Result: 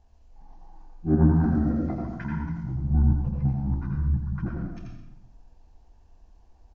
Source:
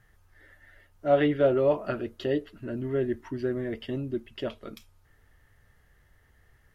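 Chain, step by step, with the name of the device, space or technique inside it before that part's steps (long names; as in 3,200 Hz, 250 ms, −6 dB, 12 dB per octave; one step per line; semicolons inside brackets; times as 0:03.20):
0:01.31–0:02.64: tilt shelving filter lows −7 dB, about 1,200 Hz
monster voice (pitch shifter −10.5 semitones; formants moved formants −3 semitones; low-shelf EQ 240 Hz +9 dB; single-tap delay 84 ms −7 dB; convolution reverb RT60 0.90 s, pre-delay 82 ms, DRR 1.5 dB)
level −4 dB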